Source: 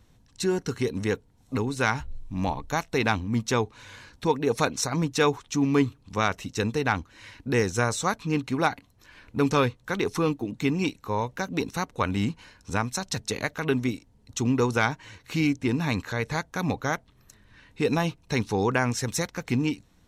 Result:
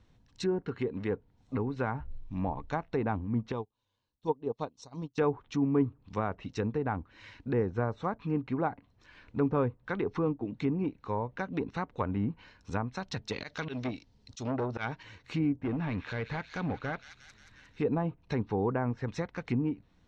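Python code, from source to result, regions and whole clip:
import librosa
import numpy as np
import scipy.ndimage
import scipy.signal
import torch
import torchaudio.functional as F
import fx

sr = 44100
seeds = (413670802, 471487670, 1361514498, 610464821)

y = fx.chain(x, sr, fx.resample_bad(factor=4, down='filtered', up='hold'),
    fx.low_shelf(hz=120.0, db=-6.5), at=(0.62, 1.11))
y = fx.chain(y, sr, fx.band_shelf(hz=1800.0, db=-12.5, octaves=1.1),
    fx.upward_expand(threshold_db=-37.0, expansion=2.5), at=(3.52, 5.18))
y = fx.chain(y, sr, fx.peak_eq(hz=4900.0, db=13.5, octaves=1.5),
    fx.auto_swell(attack_ms=118.0),
    fx.transformer_sat(knee_hz=1400.0), at=(13.32, 15.03))
y = fx.chain(y, sr, fx.overload_stage(gain_db=23.5),
    fx.echo_wet_highpass(ms=178, feedback_pct=63, hz=2700.0, wet_db=-5.5), at=(15.58, 17.81))
y = scipy.signal.sosfilt(scipy.signal.butter(2, 4700.0, 'lowpass', fs=sr, output='sos'), y)
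y = fx.env_lowpass_down(y, sr, base_hz=930.0, full_db=-22.0)
y = y * 10.0 ** (-4.5 / 20.0)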